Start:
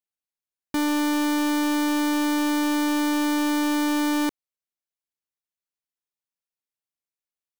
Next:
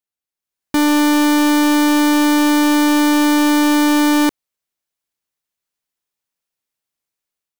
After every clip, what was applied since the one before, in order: level rider gain up to 8 dB; trim +1.5 dB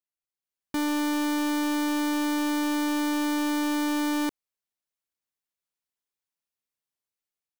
peak limiter -17.5 dBFS, peak gain reduction 4.5 dB; trim -8.5 dB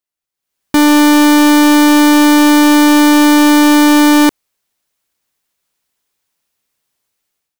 level rider gain up to 12 dB; trim +7 dB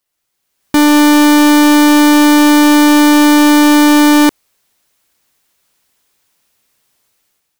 companding laws mixed up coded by mu

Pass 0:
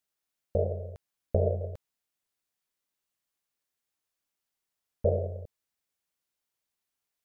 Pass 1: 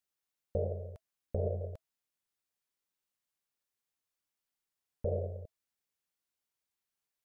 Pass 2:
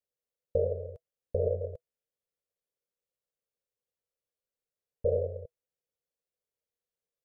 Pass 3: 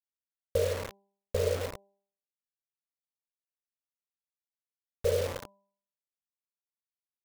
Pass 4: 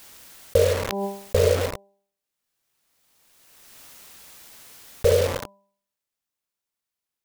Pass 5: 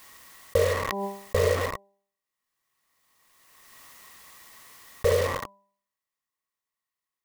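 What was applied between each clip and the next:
band-stop 650 Hz, Q 19; peak limiter -19.5 dBFS, peak gain reduction 5.5 dB; trim -4 dB
FFT filter 130 Hz 0 dB, 310 Hz -7 dB, 490 Hz +11 dB, 860 Hz -9 dB
wow and flutter 18 cents; bit crusher 6-bit; de-hum 198.3 Hz, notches 5
swell ahead of each attack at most 25 dB/s; trim +9 dB
small resonant body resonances 1.1/1.9 kHz, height 14 dB, ringing for 25 ms; trim -4.5 dB

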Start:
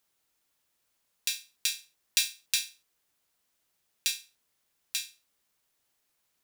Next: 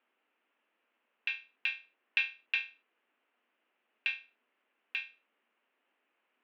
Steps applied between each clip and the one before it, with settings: Chebyshev band-pass 230–2800 Hz, order 4; trim +5.5 dB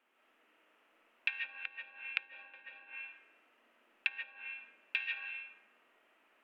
flutter echo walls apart 9.4 m, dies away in 0.39 s; algorithmic reverb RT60 1.2 s, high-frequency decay 0.45×, pre-delay 110 ms, DRR -5 dB; low-pass that closes with the level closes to 480 Hz, closed at -28.5 dBFS; trim +3 dB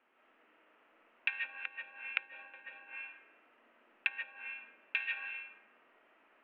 low-pass 2.4 kHz 12 dB/octave; trim +4 dB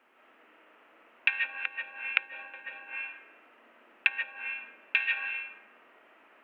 bass shelf 65 Hz -10 dB; trim +8 dB

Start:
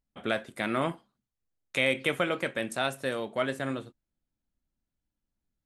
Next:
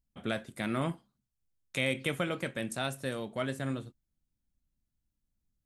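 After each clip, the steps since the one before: tone controls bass +10 dB, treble +6 dB; trim -6 dB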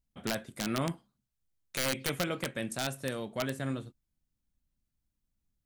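integer overflow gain 21.5 dB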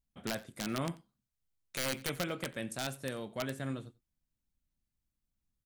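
delay 89 ms -21 dB; trim -3.5 dB

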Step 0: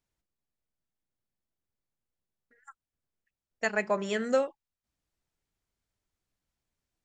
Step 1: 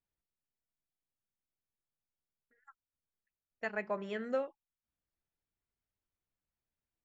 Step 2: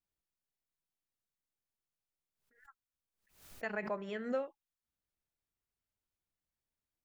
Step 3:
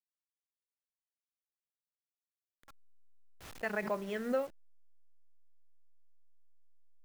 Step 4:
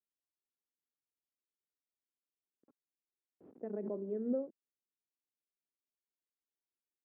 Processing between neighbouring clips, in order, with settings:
low-pass 3 kHz 12 dB/octave; trim -8 dB
swell ahead of each attack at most 110 dB/s; trim -2 dB
send-on-delta sampling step -52 dBFS; trim +3 dB
Butterworth band-pass 310 Hz, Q 1.3; trim +3 dB

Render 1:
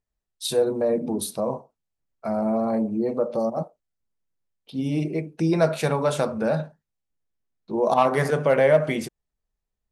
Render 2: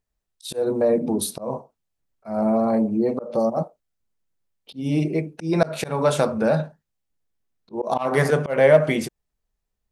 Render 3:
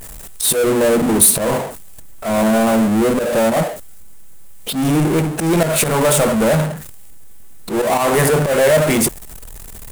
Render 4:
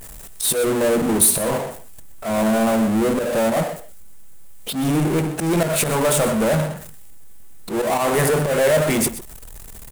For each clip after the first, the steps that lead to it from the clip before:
slow attack 180 ms; trim +3.5 dB
power-law waveshaper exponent 0.35; resonant high shelf 6.8 kHz +7 dB, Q 1.5; trim -3.5 dB
delay 125 ms -14 dB; trim -4 dB

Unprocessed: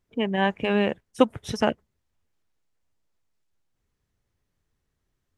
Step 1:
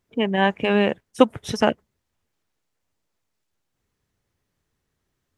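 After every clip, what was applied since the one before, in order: bass shelf 67 Hz -9.5 dB; trim +4 dB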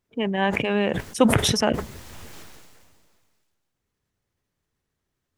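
decay stretcher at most 29 dB/s; trim -4 dB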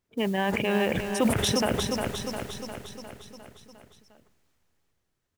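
modulation noise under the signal 24 dB; on a send: feedback delay 354 ms, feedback 59%, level -8 dB; on the sum: peak limiter -12.5 dBFS, peak gain reduction 11 dB; trim -2 dB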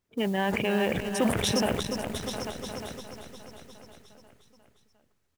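delay 844 ms -9.5 dB; transformer saturation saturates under 430 Hz

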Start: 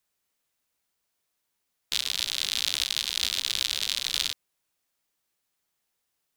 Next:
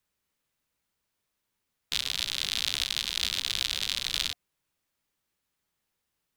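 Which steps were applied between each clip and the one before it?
tone controls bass +6 dB, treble -4 dB; band-stop 710 Hz, Q 13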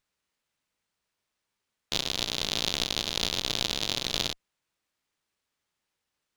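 bass shelf 320 Hz -5 dB; sliding maximum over 3 samples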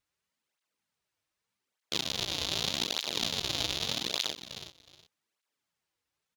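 feedback delay 367 ms, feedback 19%, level -11.5 dB; cancelling through-zero flanger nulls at 0.83 Hz, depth 5.4 ms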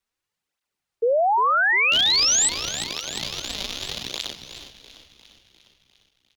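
painted sound rise, 1.02–2.49 s, 520–8300 Hz -20 dBFS; frequency-shifting echo 351 ms, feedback 60%, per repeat -47 Hz, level -14.5 dB; frequency shift -76 Hz; trim +1 dB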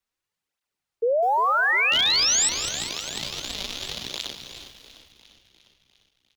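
bit-crushed delay 202 ms, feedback 55%, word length 7-bit, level -11.5 dB; trim -2 dB

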